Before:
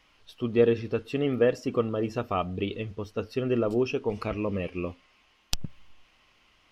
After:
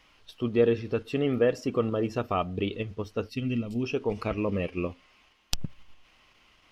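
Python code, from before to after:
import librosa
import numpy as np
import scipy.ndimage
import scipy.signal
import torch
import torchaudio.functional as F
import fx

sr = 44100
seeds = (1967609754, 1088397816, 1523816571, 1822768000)

p1 = fx.spec_box(x, sr, start_s=3.29, length_s=0.55, low_hz=280.0, high_hz=1900.0, gain_db=-15)
p2 = fx.level_steps(p1, sr, step_db=16)
p3 = p1 + (p2 * 10.0 ** (-2.0 / 20.0))
y = p3 * 10.0 ** (-2.5 / 20.0)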